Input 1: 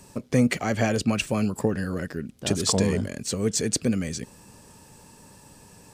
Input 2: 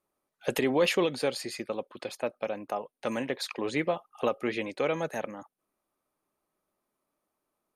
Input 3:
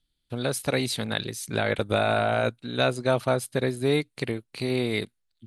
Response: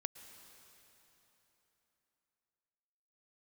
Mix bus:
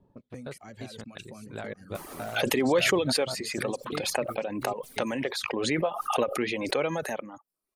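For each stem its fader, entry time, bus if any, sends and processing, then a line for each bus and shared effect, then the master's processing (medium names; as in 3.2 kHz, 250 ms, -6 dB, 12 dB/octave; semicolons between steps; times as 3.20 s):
-10.5 dB, 0.00 s, no send, echo send -11 dB, level-controlled noise filter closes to 610 Hz, open at -22.5 dBFS; compression 2.5:1, threshold -36 dBFS, peak gain reduction 13.5 dB
+1.0 dB, 1.95 s, no send, no echo send, swell ahead of each attack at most 32 dB/s
-11.0 dB, 0.00 s, no send, no echo send, treble shelf 3.8 kHz -11 dB; trance gate "xxx.x..xx.xx" 130 bpm -24 dB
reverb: none
echo: delay 1126 ms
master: reverb removal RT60 0.55 s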